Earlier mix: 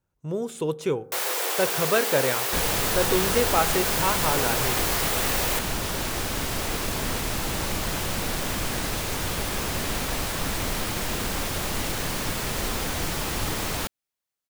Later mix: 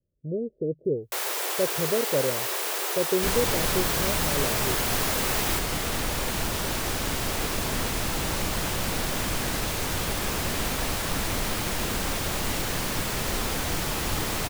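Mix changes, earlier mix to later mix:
speech: add steep low-pass 610 Hz 72 dB/octave; second sound: entry +0.70 s; reverb: off

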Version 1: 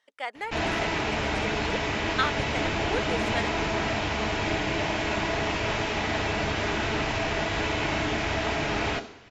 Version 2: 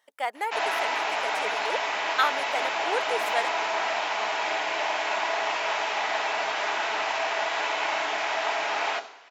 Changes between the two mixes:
speech: remove band-pass 750–5900 Hz; master: add resonant high-pass 790 Hz, resonance Q 1.6

